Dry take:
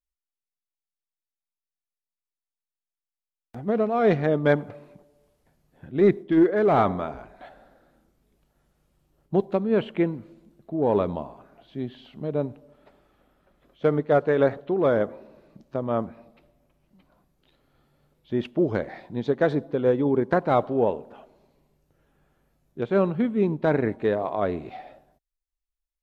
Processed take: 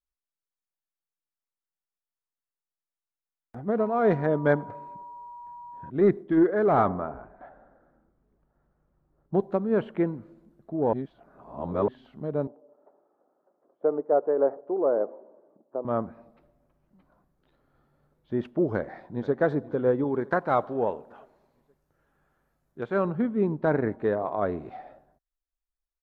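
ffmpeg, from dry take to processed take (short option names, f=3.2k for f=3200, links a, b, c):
-filter_complex "[0:a]asettb=1/sr,asplit=3[a][b][c];[a]atrim=end=3.794[d];[b]atrim=start=3.79:end=5.9,asetpts=PTS-STARTPTS,afade=t=in:d=0.004:c=qsin,afade=t=out:st=2.106:d=0.004:c=qsin,aeval=exprs='val(0)+0.0112*sin(2*PI*960*n/s)':c=same[e];[c]atrim=start=5.896[f];[d][e]acrossfade=d=0.004:c1=hsin:c2=qsin[g];[g][f]acrossfade=d=0.004:c1=qsin:c2=hsin,asettb=1/sr,asplit=3[h][i][j];[h]atrim=end=6.884[k];[i]atrim=start=6.88:end=9.34,asetpts=PTS-STARTPTS,afade=t=in:d=0.004:c=qsin,afade=t=out:st=2.456:d=0.004:c=qsin,lowpass=1.7k[l];[j]atrim=start=9.336[m];[k][l]acrossfade=d=0.004:c1=hsin:c2=qsin[n];[n][m]acrossfade=d=0.004:c1=qsin:c2=hsin,asettb=1/sr,asplit=3[o][p][q];[o]atrim=end=12.474[r];[p]atrim=start=12.47:end=15.85,asetpts=PTS-STARTPTS,afade=t=in:d=0.004:c=qsin,afade=t=out:st=3.376:d=0.004:c=qsin,asuperpass=centerf=550:order=4:qfactor=0.9[s];[q]atrim=start=15.846[t];[r][s]acrossfade=d=0.004:c1=hsin:c2=qsin[u];[u][t]acrossfade=d=0.004:c1=qsin:c2=hsin,asplit=2[v][w];[w]afade=t=in:st=18.66:d=0.01,afade=t=out:st=19.34:d=0.01,aecho=0:1:480|960|1440|1920|2400:0.133352|0.0733437|0.040339|0.0221865|0.0122026[x];[v][x]amix=inputs=2:normalize=0,asettb=1/sr,asplit=3[y][z][aa];[y]atrim=end=20.044[ab];[z]atrim=start=20.04:end=23.05,asetpts=PTS-STARTPTS,afade=t=in:d=0.004:c=qsin,afade=t=out:st=3.006:d=0.004:c=qsin,tiltshelf=f=930:g=-4.5[ac];[aa]atrim=start=23.046[ad];[ab][ac]acrossfade=d=0.004:c1=hsin:c2=qsin[ae];[ae][ad]acrossfade=d=0.004:c1=qsin:c2=hsin,asplit=3[af][ag][ah];[af]atrim=end=10.932[ai];[ag]atrim=start=10.928:end=11.882,asetpts=PTS-STARTPTS,areverse[aj];[ah]atrim=start=11.878[ak];[ai][aj]acrossfade=d=0.004:c1=hsin:c2=hsin[al];[al][ak]acrossfade=d=0.004:c1=hsin:c2=hsin,highshelf=f=2k:t=q:w=1.5:g=-7.5,volume=-2.5dB"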